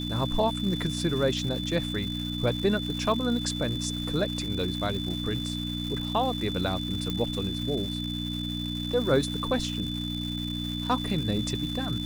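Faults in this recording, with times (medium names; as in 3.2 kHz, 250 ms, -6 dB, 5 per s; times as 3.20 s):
crackle 500 per s -35 dBFS
hum 60 Hz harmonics 5 -33 dBFS
whine 3.5 kHz -35 dBFS
7.10 s: pop -17 dBFS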